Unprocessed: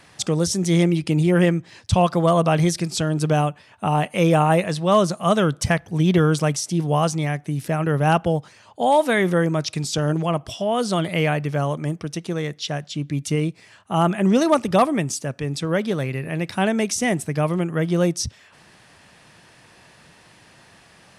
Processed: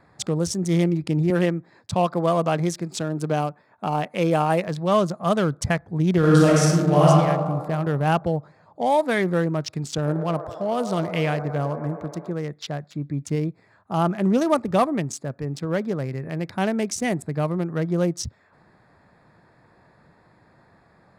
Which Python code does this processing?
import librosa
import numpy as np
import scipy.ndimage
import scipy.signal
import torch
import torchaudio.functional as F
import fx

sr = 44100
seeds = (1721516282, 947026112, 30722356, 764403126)

y = fx.highpass(x, sr, hz=170.0, slope=12, at=(1.3, 4.68))
y = fx.reverb_throw(y, sr, start_s=6.18, length_s=0.9, rt60_s=2.0, drr_db=-6.5)
y = fx.echo_wet_bandpass(y, sr, ms=106, feedback_pct=79, hz=800.0, wet_db=-9.5, at=(10.04, 12.31), fade=0.02)
y = fx.wiener(y, sr, points=15)
y = F.gain(torch.from_numpy(y), -2.5).numpy()